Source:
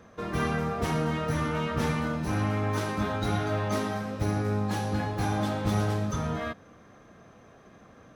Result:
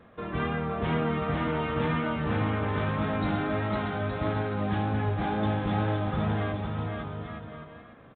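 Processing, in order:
bouncing-ball delay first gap 510 ms, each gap 0.7×, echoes 5
tape wow and flutter 28 cents
level −1.5 dB
mu-law 64 kbit/s 8,000 Hz

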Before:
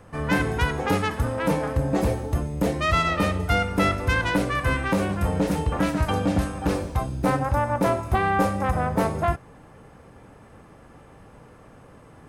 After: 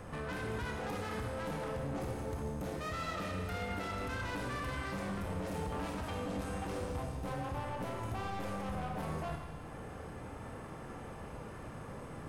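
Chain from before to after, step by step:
downward compressor 1.5 to 1, threshold −45 dBFS, peak gain reduction 10.5 dB
brickwall limiter −29 dBFS, peak gain reduction 10.5 dB
soft clipping −38.5 dBFS, distortion −10 dB
four-comb reverb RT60 1.8 s, combs from 25 ms, DRR 2 dB
level +2 dB

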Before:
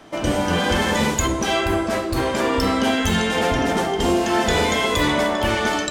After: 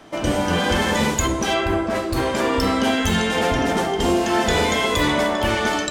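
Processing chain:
0:01.53–0:01.94: high-shelf EQ 7,300 Hz → 3,600 Hz −10.5 dB

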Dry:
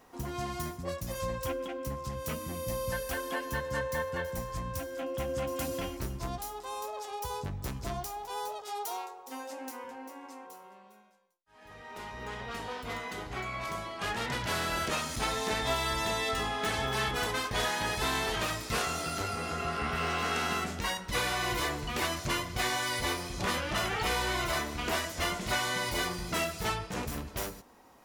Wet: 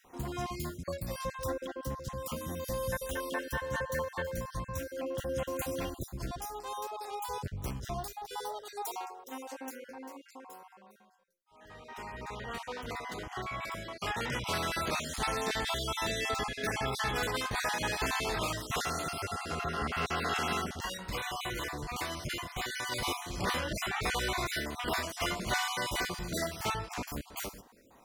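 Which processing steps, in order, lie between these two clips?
time-frequency cells dropped at random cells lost 31%
0:20.66–0:22.92: downward compressor, threshold −33 dBFS, peak gain reduction 6 dB

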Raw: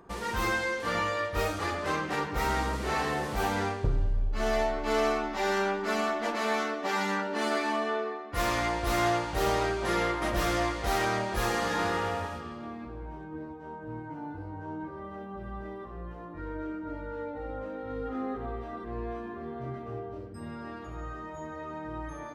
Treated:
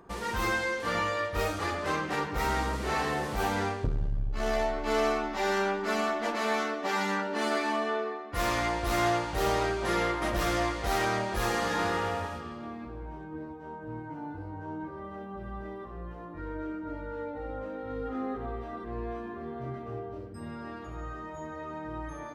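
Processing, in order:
saturating transformer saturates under 110 Hz

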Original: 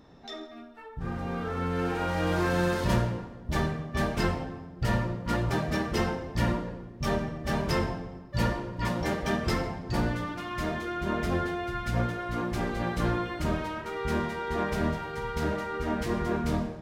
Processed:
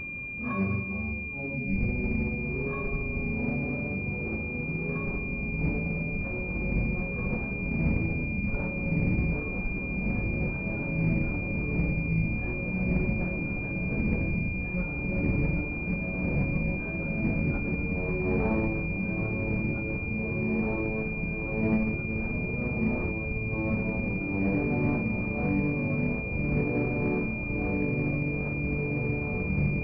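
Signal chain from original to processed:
stylus tracing distortion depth 0.03 ms
brickwall limiter −22.5 dBFS, peak gain reduction 8.5 dB
time stretch by phase vocoder 0.55×
spectral tilt +1.5 dB per octave
compressor whose output falls as the input rises −41 dBFS, ratio −0.5
parametric band 620 Hz +7.5 dB 1.3 octaves
delay that swaps between a low-pass and a high-pass 345 ms, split 880 Hz, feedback 77%, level −2 dB
change of speed 0.31×
switching amplifier with a slow clock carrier 2,400 Hz
level +7.5 dB

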